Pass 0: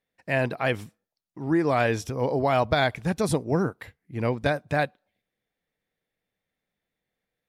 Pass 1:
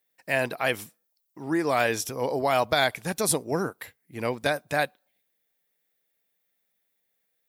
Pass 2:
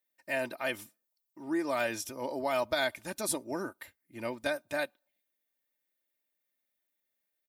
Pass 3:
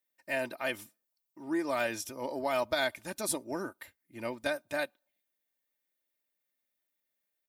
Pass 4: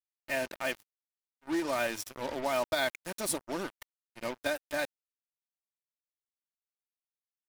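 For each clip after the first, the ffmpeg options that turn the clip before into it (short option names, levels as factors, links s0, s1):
-af "aemphasis=mode=production:type=bsi"
-af "aecho=1:1:3.3:0.65,volume=0.355"
-af "aeval=exprs='0.141*(cos(1*acos(clip(val(0)/0.141,-1,1)))-cos(1*PI/2))+0.002*(cos(7*acos(clip(val(0)/0.141,-1,1)))-cos(7*PI/2))':c=same"
-af "acrusher=bits=5:mix=0:aa=0.5"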